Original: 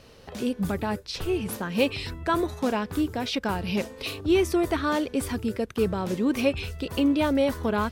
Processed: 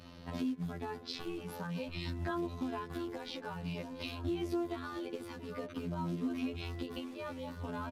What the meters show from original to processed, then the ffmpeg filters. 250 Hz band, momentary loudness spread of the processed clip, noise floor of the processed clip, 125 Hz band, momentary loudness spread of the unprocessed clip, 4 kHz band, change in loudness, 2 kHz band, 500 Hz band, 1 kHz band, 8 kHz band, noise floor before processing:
−12.5 dB, 6 LU, −50 dBFS, −8.0 dB, 8 LU, −12.5 dB, −13.0 dB, −14.0 dB, −15.0 dB, −13.0 dB, −18.0 dB, −49 dBFS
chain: -filter_complex "[0:a]afftfilt=real='hypot(re,im)*cos(PI*b)':imag='0':win_size=2048:overlap=0.75,equalizer=frequency=125:width_type=o:width=1:gain=5,equalizer=frequency=250:width_type=o:width=1:gain=6,equalizer=frequency=1000:width_type=o:width=1:gain=5,equalizer=frequency=4000:width_type=o:width=1:gain=4,equalizer=frequency=8000:width_type=o:width=1:gain=-7,asplit=2[link_01][link_02];[link_02]acrusher=bits=3:mode=log:mix=0:aa=0.000001,volume=-7dB[link_03];[link_01][link_03]amix=inputs=2:normalize=0,alimiter=limit=-14dB:level=0:latency=1:release=300,aresample=32000,aresample=44100,acompressor=threshold=-31dB:ratio=5,highshelf=frequency=11000:gain=-5.5,asplit=2[link_04][link_05];[link_05]adelay=682,lowpass=frequency=1300:poles=1,volume=-9dB,asplit=2[link_06][link_07];[link_07]adelay=682,lowpass=frequency=1300:poles=1,volume=0.49,asplit=2[link_08][link_09];[link_09]adelay=682,lowpass=frequency=1300:poles=1,volume=0.49,asplit=2[link_10][link_11];[link_11]adelay=682,lowpass=frequency=1300:poles=1,volume=0.49,asplit=2[link_12][link_13];[link_13]adelay=682,lowpass=frequency=1300:poles=1,volume=0.49,asplit=2[link_14][link_15];[link_15]adelay=682,lowpass=frequency=1300:poles=1,volume=0.49[link_16];[link_04][link_06][link_08][link_10][link_12][link_14][link_16]amix=inputs=7:normalize=0,asplit=2[link_17][link_18];[link_18]adelay=7.9,afreqshift=-0.51[link_19];[link_17][link_19]amix=inputs=2:normalize=1,volume=-1.5dB"

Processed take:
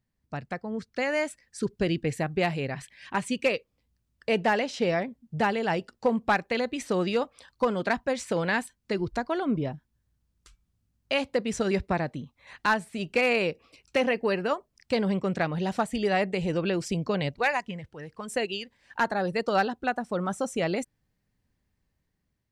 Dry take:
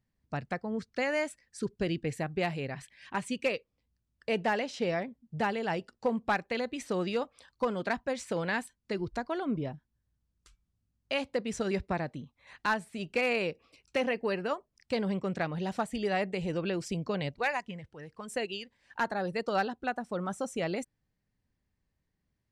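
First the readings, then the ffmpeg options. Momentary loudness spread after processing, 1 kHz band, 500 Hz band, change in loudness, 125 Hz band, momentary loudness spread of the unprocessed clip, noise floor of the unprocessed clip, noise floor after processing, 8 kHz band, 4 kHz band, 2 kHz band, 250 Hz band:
9 LU, +5.0 dB, +5.0 dB, +5.0 dB, +5.0 dB, 9 LU, −81 dBFS, −77 dBFS, +5.0 dB, +5.0 dB, +5.0 dB, +5.0 dB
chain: -af "dynaudnorm=framelen=440:gausssize=5:maxgain=5dB"

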